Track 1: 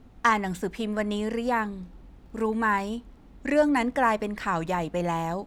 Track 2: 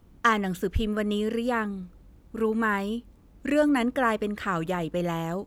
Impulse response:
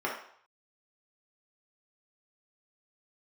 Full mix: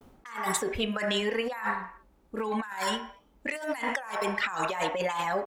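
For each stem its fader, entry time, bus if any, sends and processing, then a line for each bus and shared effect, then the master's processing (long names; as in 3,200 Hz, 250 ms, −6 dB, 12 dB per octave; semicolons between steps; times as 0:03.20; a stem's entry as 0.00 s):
−0.5 dB, 0.00 s, send −9.5 dB, reverb reduction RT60 2 s; spectral tilt +4.5 dB per octave; low-pass that shuts in the quiet parts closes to 510 Hz, open at −23.5 dBFS
+0.5 dB, 3.8 ms, no send, low shelf with overshoot 550 Hz −8.5 dB, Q 1.5; automatic ducking −12 dB, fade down 0.20 s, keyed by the first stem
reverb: on, RT60 0.60 s, pre-delay 3 ms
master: compressor whose output falls as the input rises −32 dBFS, ratio −1; pitch vibrato 0.64 Hz 57 cents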